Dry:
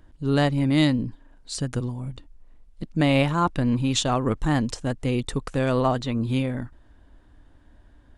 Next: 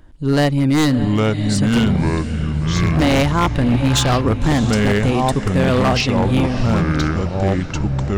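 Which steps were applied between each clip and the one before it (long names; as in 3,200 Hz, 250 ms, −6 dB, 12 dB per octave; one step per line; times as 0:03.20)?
delay with pitch and tempo change per echo 682 ms, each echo −5 semitones, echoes 3
feedback delay with all-pass diffusion 620 ms, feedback 43%, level −13 dB
wave folding −15 dBFS
level +6.5 dB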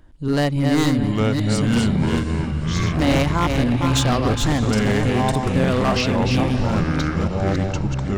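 delay that plays each chunk backwards 280 ms, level −4.5 dB
level −4 dB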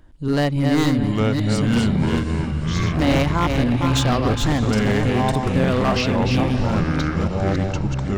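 dynamic equaliser 9,000 Hz, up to −4 dB, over −42 dBFS, Q 0.8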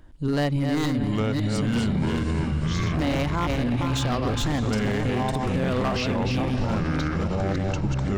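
brickwall limiter −17 dBFS, peak gain reduction 8 dB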